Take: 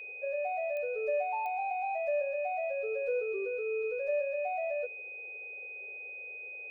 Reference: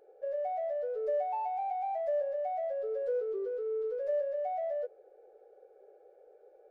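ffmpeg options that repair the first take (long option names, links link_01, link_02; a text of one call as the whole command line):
ffmpeg -i in.wav -af "adeclick=threshold=4,bandreject=frequency=2500:width=30" out.wav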